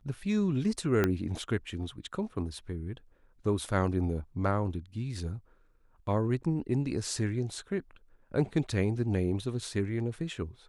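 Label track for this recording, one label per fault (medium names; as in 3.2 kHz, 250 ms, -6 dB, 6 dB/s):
1.040000	1.040000	pop -13 dBFS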